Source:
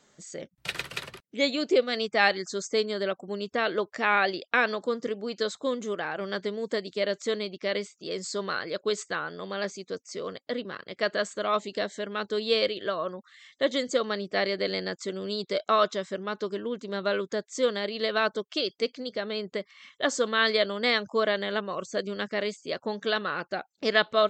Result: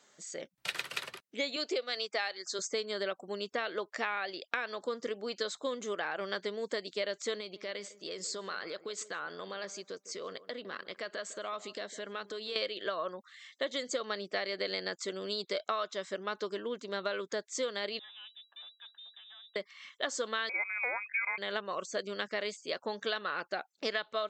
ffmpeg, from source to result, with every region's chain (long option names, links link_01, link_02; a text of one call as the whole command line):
ffmpeg -i in.wav -filter_complex "[0:a]asettb=1/sr,asplit=3[link_01][link_02][link_03];[link_01]atrim=end=1.564[link_04];[link_02]atrim=start=1.56:end=2.59,asetpts=PTS-STARTPTS,afade=type=in:duration=0.004:curve=qsin,afade=type=out:start_time=1.026:duration=0.004:curve=qsin,highpass=340,equalizer=frequency=4600:width=2.4:gain=4.5[link_05];[link_03]atrim=start=2.586[link_06];[link_04][link_05]acrossfade=duration=0.004:curve1=hsin:curve2=qsin[link_07];[link_07][link_06]acrossfade=duration=0.004:curve1=qsin:curve2=hsin,asettb=1/sr,asplit=3[link_08][link_09][link_10];[link_08]atrim=end=7.404[link_11];[link_09]atrim=start=7.4:end=12.56,asetpts=PTS-STARTPTS,afade=type=in:duration=0.004:curve=qsin,afade=type=out:start_time=5.156:duration=0.004:curve=qsin,acompressor=threshold=-33dB:ratio=6:attack=3.2:release=140:knee=1:detection=peak,asplit=2[link_12][link_13];[link_13]adelay=155,lowpass=frequency=990:poles=1,volume=-15dB,asplit=2[link_14][link_15];[link_15]adelay=155,lowpass=frequency=990:poles=1,volume=0.27,asplit=2[link_16][link_17];[link_17]adelay=155,lowpass=frequency=990:poles=1,volume=0.27[link_18];[link_12][link_14][link_16][link_18]amix=inputs=4:normalize=0,atrim=end_sample=227556[link_19];[link_10]atrim=start=12.556[link_20];[link_11][link_19]acrossfade=duration=0.004:curve1=hsin:curve2=qsin[link_21];[link_21][link_20]acrossfade=duration=0.004:curve1=qsin:curve2=hsin,asettb=1/sr,asplit=3[link_22][link_23][link_24];[link_22]atrim=end=17.994[link_25];[link_23]atrim=start=17.99:end=19.56,asetpts=PTS-STARTPTS,afade=type=in:duration=0.004:curve=qsin,afade=type=out:start_time=1.566:duration=0.004:curve=qsin,asplit=3[link_26][link_27][link_28];[link_26]bandpass=frequency=300:width_type=q:width=8,volume=0dB[link_29];[link_27]bandpass=frequency=870:width_type=q:width=8,volume=-6dB[link_30];[link_28]bandpass=frequency=2240:width_type=q:width=8,volume=-9dB[link_31];[link_29][link_30][link_31]amix=inputs=3:normalize=0,aeval=exprs='(tanh(224*val(0)+0.35)-tanh(0.35))/224':channel_layout=same,lowpass=frequency=3300:width_type=q:width=0.5098,lowpass=frequency=3300:width_type=q:width=0.6013,lowpass=frequency=3300:width_type=q:width=0.9,lowpass=frequency=3300:width_type=q:width=2.563,afreqshift=-3900[link_32];[link_24]atrim=start=19.556[link_33];[link_25][link_32]acrossfade=duration=0.004:curve1=hsin:curve2=qsin[link_34];[link_34][link_33]acrossfade=duration=0.004:curve1=qsin:curve2=hsin,asettb=1/sr,asplit=3[link_35][link_36][link_37];[link_35]atrim=end=20.494[link_38];[link_36]atrim=start=20.49:end=21.38,asetpts=PTS-STARTPTS,afade=type=in:duration=0.004:curve=qsin,afade=type=out:start_time=0.886:duration=0.004:curve=qsin,lowpass=frequency=2300:width_type=q:width=0.5098,lowpass=frequency=2300:width_type=q:width=0.6013,lowpass=frequency=2300:width_type=q:width=0.9,lowpass=frequency=2300:width_type=q:width=2.563,afreqshift=-2700,highpass=99[link_39];[link_37]atrim=start=21.376[link_40];[link_38][link_39]acrossfade=duration=0.004:curve1=hsin:curve2=qsin[link_41];[link_41][link_40]acrossfade=duration=0.004:curve1=qsin:curve2=hsin,highpass=frequency=550:poles=1,acompressor=threshold=-30dB:ratio=12" out.wav